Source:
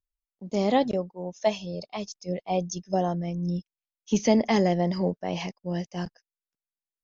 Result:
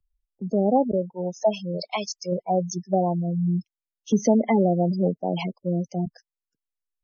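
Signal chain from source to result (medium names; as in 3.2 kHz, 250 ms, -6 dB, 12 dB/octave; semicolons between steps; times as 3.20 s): 1.77–2.32 s: tilt shelf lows -8 dB, about 650 Hz; spectral gate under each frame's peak -15 dB strong; three bands compressed up and down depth 40%; trim +3.5 dB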